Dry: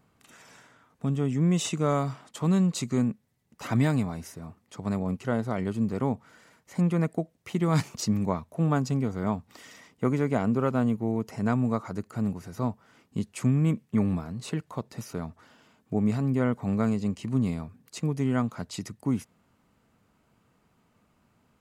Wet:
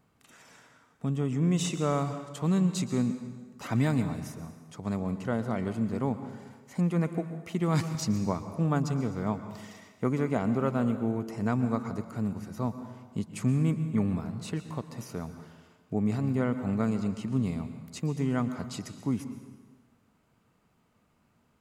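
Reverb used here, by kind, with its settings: plate-style reverb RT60 1.4 s, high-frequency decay 0.85×, pre-delay 0.105 s, DRR 10 dB; gain -2.5 dB

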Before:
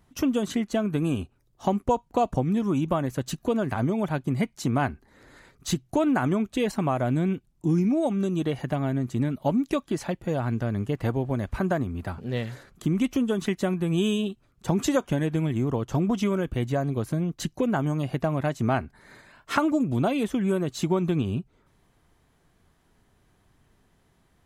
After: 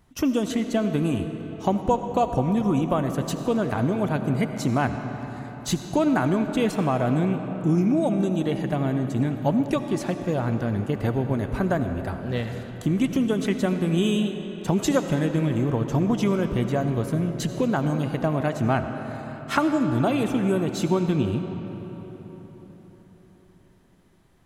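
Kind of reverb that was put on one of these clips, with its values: digital reverb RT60 4.6 s, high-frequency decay 0.6×, pre-delay 40 ms, DRR 7 dB; gain +1.5 dB

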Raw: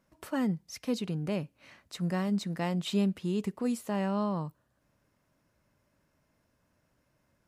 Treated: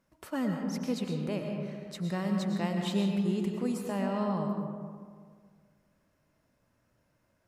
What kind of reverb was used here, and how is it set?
digital reverb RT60 1.9 s, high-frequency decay 0.4×, pre-delay 75 ms, DRR 2 dB; gain -2 dB

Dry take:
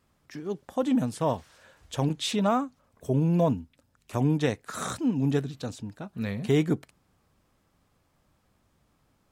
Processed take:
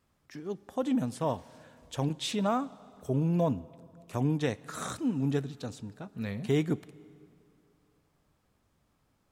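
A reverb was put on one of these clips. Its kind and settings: plate-style reverb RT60 2.8 s, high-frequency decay 0.75×, DRR 19.5 dB; gain -4 dB

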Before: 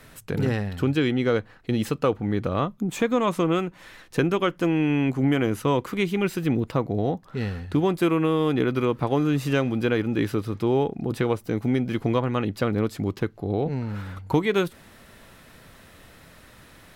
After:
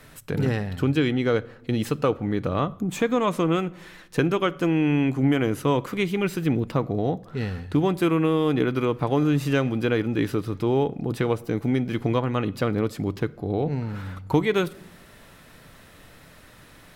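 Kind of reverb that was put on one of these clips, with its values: shoebox room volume 2300 m³, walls furnished, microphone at 0.4 m

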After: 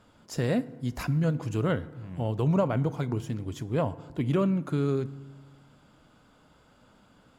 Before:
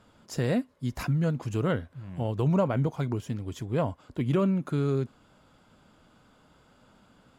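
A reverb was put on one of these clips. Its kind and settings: FDN reverb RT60 1.3 s, low-frequency decay 1.35×, high-frequency decay 0.55×, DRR 15.5 dB

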